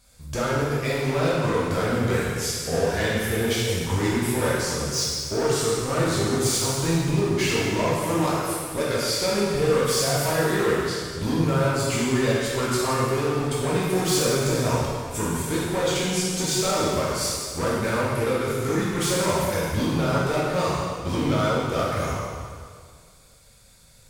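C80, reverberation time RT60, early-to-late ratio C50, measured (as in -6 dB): 0.0 dB, 1.9 s, -2.5 dB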